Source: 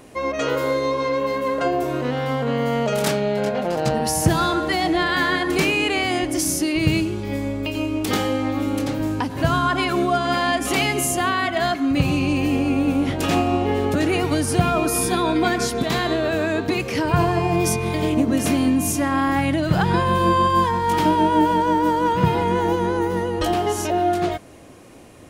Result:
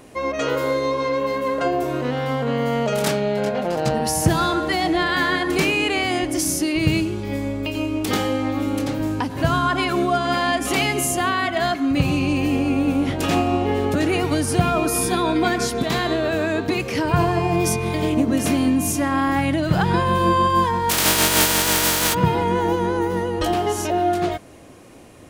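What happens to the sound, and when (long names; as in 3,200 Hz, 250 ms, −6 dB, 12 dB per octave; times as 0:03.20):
0:20.89–0:22.13: compressing power law on the bin magnitudes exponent 0.23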